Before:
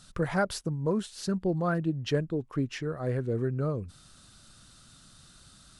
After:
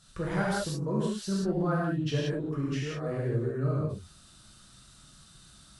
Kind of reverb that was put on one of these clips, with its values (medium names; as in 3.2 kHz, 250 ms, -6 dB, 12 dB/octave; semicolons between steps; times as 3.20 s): gated-style reverb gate 210 ms flat, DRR -6 dB; trim -7 dB